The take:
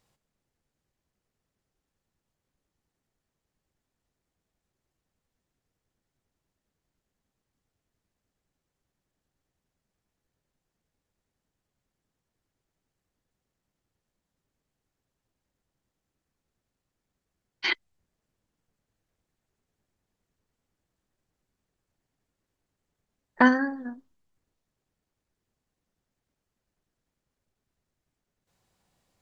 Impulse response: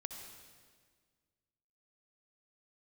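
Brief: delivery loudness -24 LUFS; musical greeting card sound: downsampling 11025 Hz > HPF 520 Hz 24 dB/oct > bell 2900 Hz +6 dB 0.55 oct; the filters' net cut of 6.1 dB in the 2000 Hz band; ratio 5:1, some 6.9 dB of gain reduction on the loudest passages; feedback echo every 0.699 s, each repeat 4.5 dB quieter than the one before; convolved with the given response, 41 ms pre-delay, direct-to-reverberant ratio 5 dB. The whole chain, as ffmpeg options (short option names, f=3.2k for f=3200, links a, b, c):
-filter_complex "[0:a]equalizer=f=2k:t=o:g=-9,acompressor=threshold=-22dB:ratio=5,aecho=1:1:699|1398|2097|2796|3495|4194|4893|5592|6291:0.596|0.357|0.214|0.129|0.0772|0.0463|0.0278|0.0167|0.01,asplit=2[a][b];[1:a]atrim=start_sample=2205,adelay=41[c];[b][c]afir=irnorm=-1:irlink=0,volume=-2.5dB[d];[a][d]amix=inputs=2:normalize=0,aresample=11025,aresample=44100,highpass=f=520:w=0.5412,highpass=f=520:w=1.3066,equalizer=f=2.9k:t=o:w=0.55:g=6,volume=13.5dB"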